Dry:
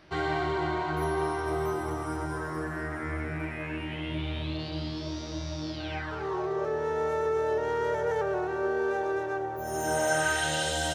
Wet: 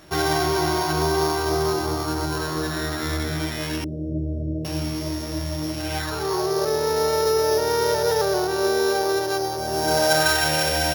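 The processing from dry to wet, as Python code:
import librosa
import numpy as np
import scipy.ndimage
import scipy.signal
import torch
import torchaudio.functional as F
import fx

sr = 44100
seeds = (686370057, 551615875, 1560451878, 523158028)

y = np.r_[np.sort(x[:len(x) // 8 * 8].reshape(-1, 8), axis=1).ravel(), x[len(x) // 8 * 8:]]
y = fx.ellip_lowpass(y, sr, hz=600.0, order=4, stop_db=40, at=(3.84, 4.65))
y = y * 10.0 ** (7.5 / 20.0)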